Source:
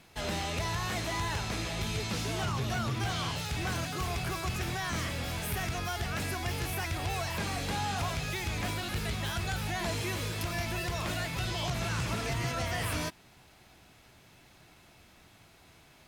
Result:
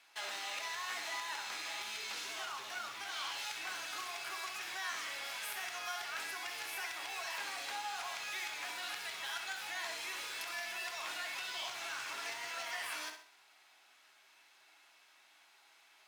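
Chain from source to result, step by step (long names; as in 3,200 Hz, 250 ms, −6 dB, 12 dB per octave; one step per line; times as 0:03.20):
on a send at −6 dB: convolution reverb RT60 0.35 s, pre-delay 3 ms
on the sum: downward compressor, threshold −33 dBFS, peak gain reduction 7 dB
in parallel at −6 dB: bit reduction 7 bits
on the sum: high-pass filter 1,100 Hz 12 dB per octave
high-shelf EQ 9,700 Hz −7.5 dB
flutter between parallel walls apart 11.1 metres, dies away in 0.48 s
level −3.5 dB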